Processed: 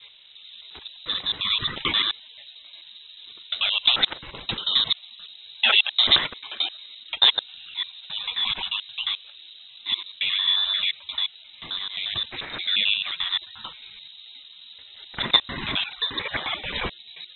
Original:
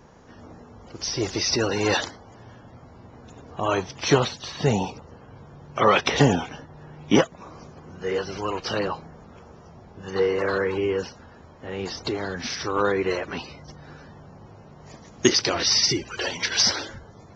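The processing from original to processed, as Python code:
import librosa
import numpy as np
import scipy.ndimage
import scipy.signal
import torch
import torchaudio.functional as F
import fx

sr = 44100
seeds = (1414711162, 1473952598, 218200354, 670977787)

y = fx.block_reorder(x, sr, ms=88.0, group=4)
y = fx.freq_invert(y, sr, carrier_hz=3900)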